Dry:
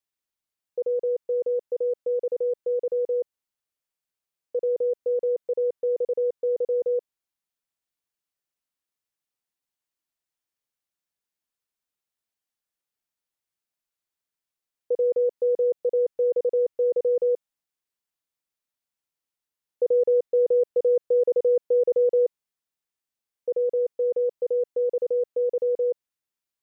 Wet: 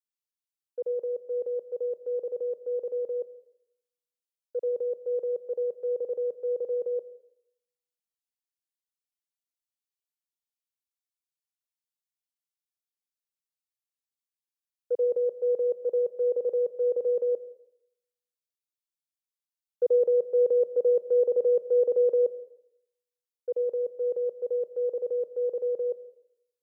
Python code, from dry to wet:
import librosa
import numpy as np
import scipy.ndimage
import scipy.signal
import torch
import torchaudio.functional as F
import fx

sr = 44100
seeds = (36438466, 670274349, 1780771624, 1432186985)

y = fx.highpass(x, sr, hz=230.0, slope=6)
y = fx.rev_plate(y, sr, seeds[0], rt60_s=1.2, hf_ratio=0.8, predelay_ms=75, drr_db=12.0)
y = fx.band_widen(y, sr, depth_pct=70)
y = F.gain(torch.from_numpy(y), -2.0).numpy()